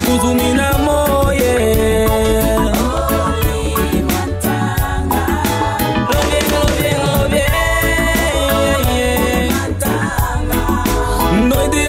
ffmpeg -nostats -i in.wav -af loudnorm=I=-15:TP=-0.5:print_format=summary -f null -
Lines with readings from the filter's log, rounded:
Input Integrated:    -14.9 LUFS
Input True Peak:      -3.3 dBTP
Input LRA:             1.6 LU
Input Threshold:     -24.9 LUFS